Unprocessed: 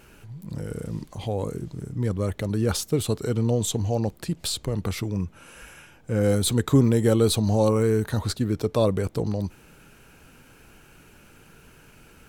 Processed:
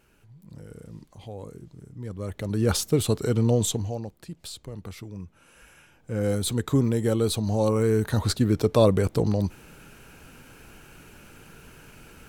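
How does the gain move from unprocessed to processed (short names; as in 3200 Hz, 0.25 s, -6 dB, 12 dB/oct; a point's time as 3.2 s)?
2.03 s -11 dB
2.69 s +1.5 dB
3.65 s +1.5 dB
4.08 s -11 dB
5.18 s -11 dB
6.24 s -4 dB
7.46 s -4 dB
8.35 s +3 dB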